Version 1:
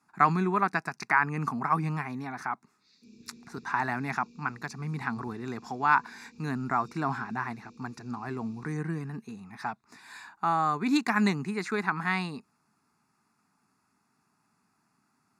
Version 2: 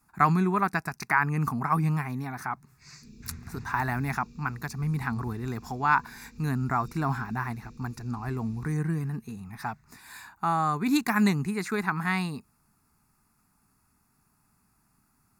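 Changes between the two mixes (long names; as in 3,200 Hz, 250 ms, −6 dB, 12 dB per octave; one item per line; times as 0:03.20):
first sound: remove resonant band-pass 3,700 Hz, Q 7.7
master: remove band-pass filter 200–6,500 Hz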